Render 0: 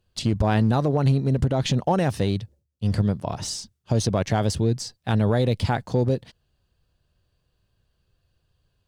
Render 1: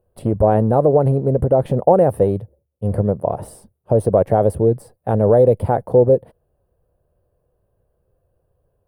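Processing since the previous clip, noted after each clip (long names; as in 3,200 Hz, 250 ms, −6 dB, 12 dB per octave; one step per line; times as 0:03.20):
drawn EQ curve 270 Hz 0 dB, 520 Hz +13 dB, 3,900 Hz −24 dB, 6,700 Hz −29 dB, 9,500 Hz 0 dB
level +2 dB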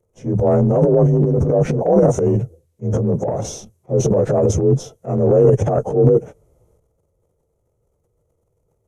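partials spread apart or drawn together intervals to 88%
transient designer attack −4 dB, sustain +12 dB
level +1 dB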